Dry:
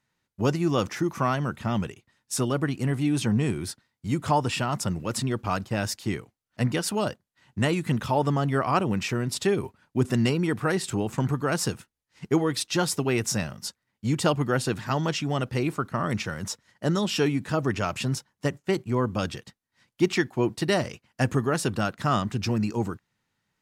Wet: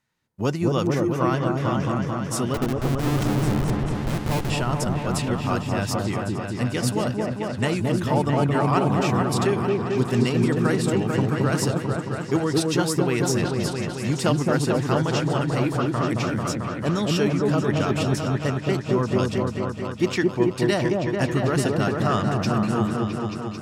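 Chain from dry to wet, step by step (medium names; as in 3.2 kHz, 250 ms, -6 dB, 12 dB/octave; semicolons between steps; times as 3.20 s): 2.54–4.50 s: Schmitt trigger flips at -26 dBFS; on a send: delay with an opening low-pass 221 ms, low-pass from 750 Hz, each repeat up 1 oct, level 0 dB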